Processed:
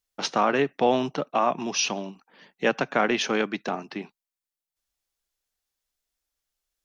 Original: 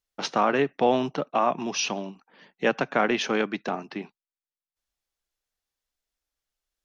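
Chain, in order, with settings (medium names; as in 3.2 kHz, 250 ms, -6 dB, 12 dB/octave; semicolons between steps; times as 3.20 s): treble shelf 4.9 kHz +5.5 dB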